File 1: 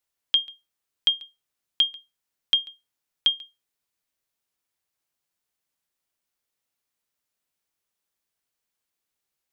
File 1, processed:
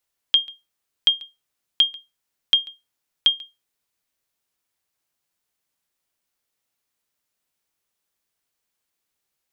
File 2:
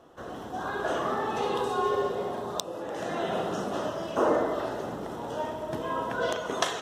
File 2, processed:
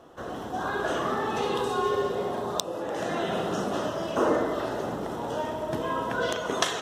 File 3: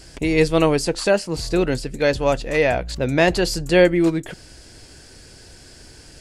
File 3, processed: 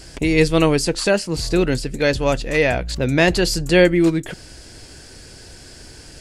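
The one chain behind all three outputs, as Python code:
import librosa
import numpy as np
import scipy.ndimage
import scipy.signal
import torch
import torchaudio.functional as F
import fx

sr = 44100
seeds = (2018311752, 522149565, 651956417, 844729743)

y = fx.dynamic_eq(x, sr, hz=730.0, q=0.84, threshold_db=-32.0, ratio=4.0, max_db=-5)
y = y * 10.0 ** (3.5 / 20.0)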